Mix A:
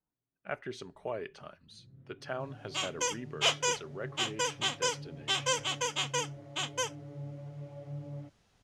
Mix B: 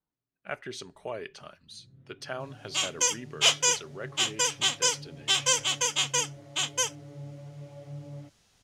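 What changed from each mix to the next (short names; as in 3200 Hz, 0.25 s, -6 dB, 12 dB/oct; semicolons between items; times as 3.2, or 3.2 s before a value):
master: add high shelf 3000 Hz +11.5 dB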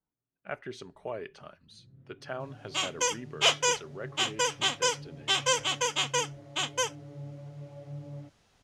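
second sound +4.0 dB; master: add high shelf 3000 Hz -11.5 dB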